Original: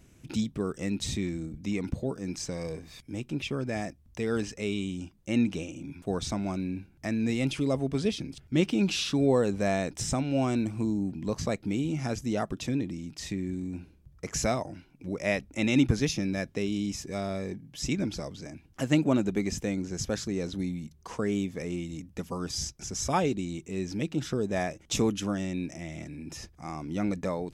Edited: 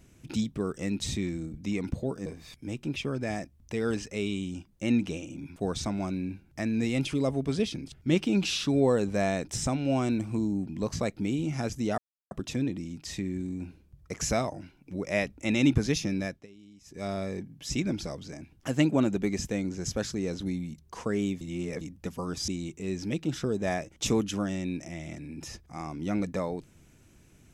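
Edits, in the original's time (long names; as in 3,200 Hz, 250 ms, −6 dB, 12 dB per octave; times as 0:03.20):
0:02.26–0:02.72: remove
0:12.44: splice in silence 0.33 s
0:16.34–0:17.22: duck −22.5 dB, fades 0.26 s
0:21.54–0:21.94: reverse
0:22.61–0:23.37: remove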